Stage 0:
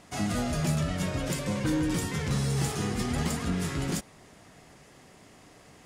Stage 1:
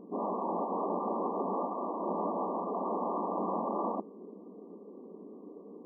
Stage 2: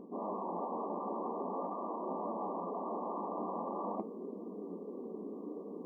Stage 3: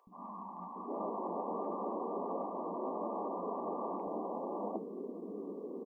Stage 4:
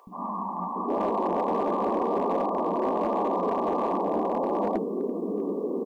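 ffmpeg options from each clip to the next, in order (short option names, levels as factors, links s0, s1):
-af "lowshelf=f=550:t=q:w=3:g=7,aeval=exprs='(mod(15.8*val(0)+1,2)-1)/15.8':c=same,afftfilt=real='re*between(b*sr/4096,180,1200)':imag='im*between(b*sr/4096,180,1200)':win_size=4096:overlap=0.75"
-af "areverse,acompressor=threshold=0.00708:ratio=4,areverse,flanger=delay=7.5:depth=7.3:regen=65:speed=0.47:shape=triangular,volume=2.99"
-filter_complex "[0:a]acrossover=split=200|1000[s0][s1][s2];[s0]adelay=70[s3];[s1]adelay=760[s4];[s3][s4][s2]amix=inputs=3:normalize=0,volume=1.26"
-filter_complex "[0:a]asplit=2[s0][s1];[s1]alimiter=level_in=3.35:limit=0.0631:level=0:latency=1:release=11,volume=0.299,volume=1[s2];[s0][s2]amix=inputs=2:normalize=0,volume=25.1,asoftclip=hard,volume=0.0398,volume=2.51"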